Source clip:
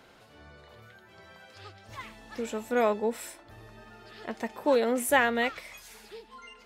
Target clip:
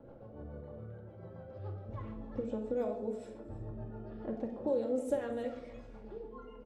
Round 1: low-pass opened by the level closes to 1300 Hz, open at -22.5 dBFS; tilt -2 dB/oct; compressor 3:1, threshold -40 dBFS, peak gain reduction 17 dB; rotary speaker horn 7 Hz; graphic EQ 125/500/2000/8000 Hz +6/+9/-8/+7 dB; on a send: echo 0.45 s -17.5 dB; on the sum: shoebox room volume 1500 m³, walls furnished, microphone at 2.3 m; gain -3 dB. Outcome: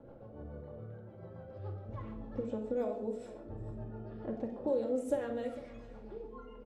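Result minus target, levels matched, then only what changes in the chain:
echo 0.13 s late
change: echo 0.32 s -17.5 dB

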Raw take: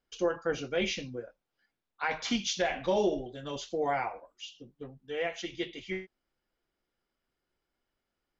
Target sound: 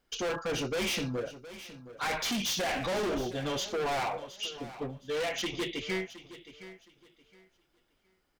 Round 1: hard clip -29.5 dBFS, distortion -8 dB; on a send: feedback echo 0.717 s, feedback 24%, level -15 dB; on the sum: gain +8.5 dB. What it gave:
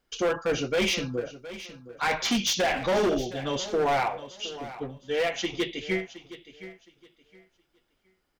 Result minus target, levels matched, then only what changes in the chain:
hard clip: distortion -5 dB
change: hard clip -38 dBFS, distortion -3 dB

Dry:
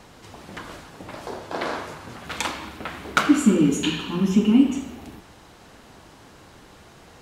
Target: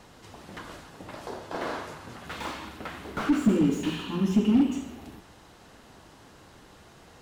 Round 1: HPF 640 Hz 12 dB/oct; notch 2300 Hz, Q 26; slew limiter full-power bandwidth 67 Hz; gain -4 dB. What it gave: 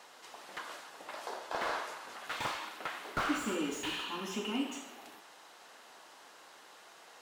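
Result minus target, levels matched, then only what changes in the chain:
500 Hz band +3.0 dB
remove: HPF 640 Hz 12 dB/oct

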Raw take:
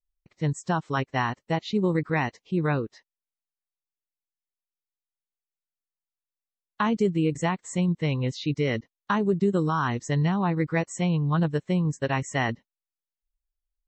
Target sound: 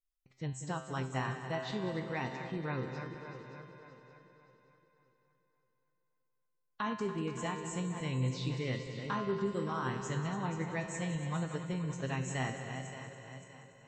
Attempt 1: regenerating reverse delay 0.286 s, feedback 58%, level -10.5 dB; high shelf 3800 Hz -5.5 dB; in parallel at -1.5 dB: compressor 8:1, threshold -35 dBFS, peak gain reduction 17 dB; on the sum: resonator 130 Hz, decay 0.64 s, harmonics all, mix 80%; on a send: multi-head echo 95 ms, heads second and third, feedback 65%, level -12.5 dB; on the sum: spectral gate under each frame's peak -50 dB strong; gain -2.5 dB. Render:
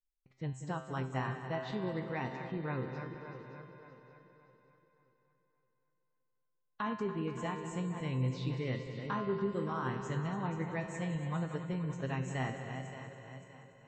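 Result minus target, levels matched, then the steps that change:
8000 Hz band -8.0 dB
change: high shelf 3800 Hz +5 dB

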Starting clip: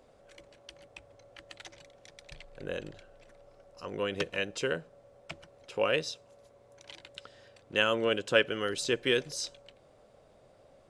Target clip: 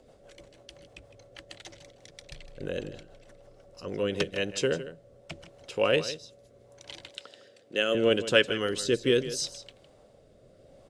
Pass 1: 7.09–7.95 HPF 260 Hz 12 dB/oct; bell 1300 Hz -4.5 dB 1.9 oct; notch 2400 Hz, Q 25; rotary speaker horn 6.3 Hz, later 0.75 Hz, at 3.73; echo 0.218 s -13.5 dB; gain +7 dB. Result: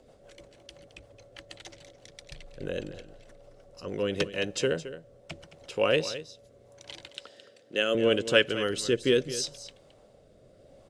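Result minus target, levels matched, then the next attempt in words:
echo 60 ms late
7.09–7.95 HPF 260 Hz 12 dB/oct; bell 1300 Hz -4.5 dB 1.9 oct; notch 2400 Hz, Q 25; rotary speaker horn 6.3 Hz, later 0.75 Hz, at 3.73; echo 0.158 s -13.5 dB; gain +7 dB

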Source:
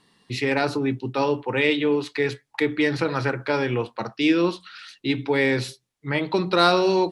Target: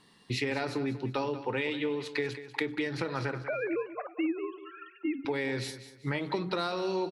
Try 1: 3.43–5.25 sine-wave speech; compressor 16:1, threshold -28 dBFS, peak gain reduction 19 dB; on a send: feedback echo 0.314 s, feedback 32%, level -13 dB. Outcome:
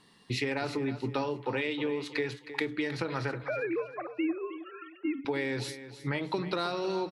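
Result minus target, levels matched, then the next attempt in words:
echo 0.122 s late
3.43–5.25 sine-wave speech; compressor 16:1, threshold -28 dBFS, peak gain reduction 19 dB; on a send: feedback echo 0.192 s, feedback 32%, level -13 dB

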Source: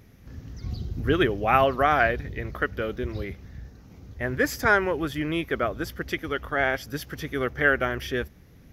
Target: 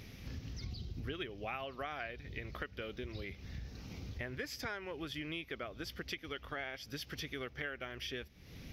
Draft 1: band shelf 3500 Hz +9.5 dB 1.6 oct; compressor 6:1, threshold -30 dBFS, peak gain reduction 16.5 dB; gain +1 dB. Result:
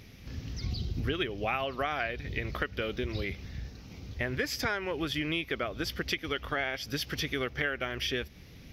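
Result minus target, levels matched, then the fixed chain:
compressor: peak gain reduction -10 dB
band shelf 3500 Hz +9.5 dB 1.6 oct; compressor 6:1, threshold -42 dBFS, peak gain reduction 26.5 dB; gain +1 dB

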